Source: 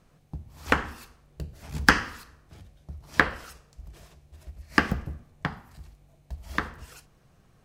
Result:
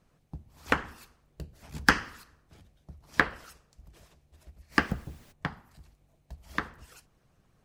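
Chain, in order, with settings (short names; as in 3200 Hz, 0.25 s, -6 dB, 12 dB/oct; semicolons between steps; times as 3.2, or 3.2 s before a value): 4.71–5.31 added noise pink -52 dBFS; harmonic-percussive split harmonic -8 dB; gain -3 dB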